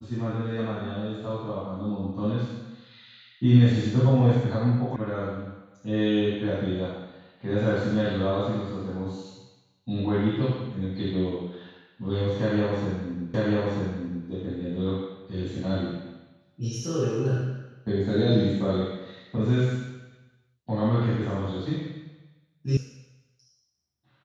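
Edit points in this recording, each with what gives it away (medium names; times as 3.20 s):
4.96 s: sound stops dead
13.34 s: repeat of the last 0.94 s
22.77 s: sound stops dead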